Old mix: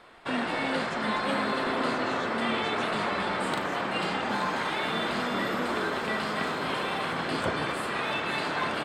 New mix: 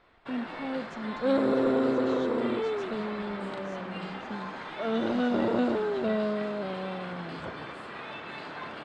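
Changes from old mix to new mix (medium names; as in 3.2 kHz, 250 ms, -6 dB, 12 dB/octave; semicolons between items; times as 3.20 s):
first sound -9.5 dB; second sound +10.0 dB; master: add distance through air 92 m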